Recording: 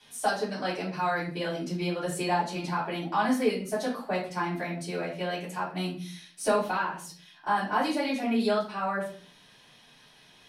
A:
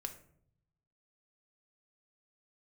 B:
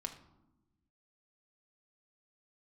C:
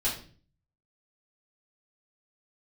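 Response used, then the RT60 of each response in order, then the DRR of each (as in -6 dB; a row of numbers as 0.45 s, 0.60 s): C; 0.65 s, 1.0 s, 0.45 s; 5.5 dB, 3.5 dB, -9.0 dB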